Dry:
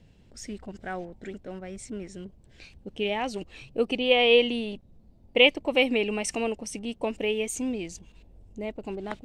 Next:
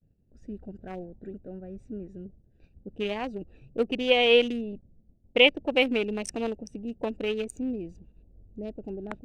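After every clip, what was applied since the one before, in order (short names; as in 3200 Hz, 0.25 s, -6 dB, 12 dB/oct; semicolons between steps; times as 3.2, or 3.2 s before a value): Wiener smoothing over 41 samples; expander -48 dBFS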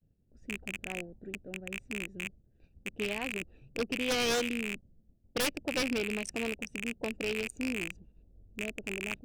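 rattling part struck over -41 dBFS, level -16 dBFS; dynamic EQ 710 Hz, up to -4 dB, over -34 dBFS, Q 1; wavefolder -20 dBFS; gain -4 dB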